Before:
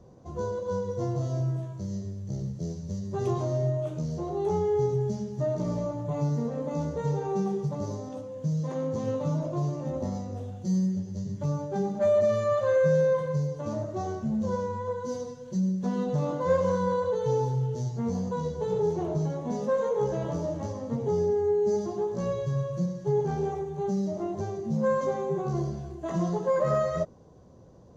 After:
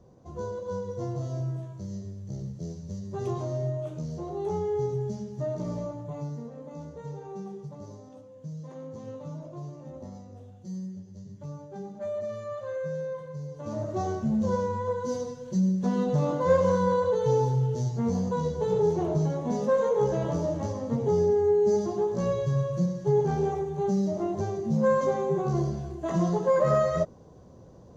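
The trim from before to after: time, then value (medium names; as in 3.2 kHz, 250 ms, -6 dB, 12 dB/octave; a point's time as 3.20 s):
5.83 s -3 dB
6.51 s -10.5 dB
13.36 s -10.5 dB
13.91 s +2.5 dB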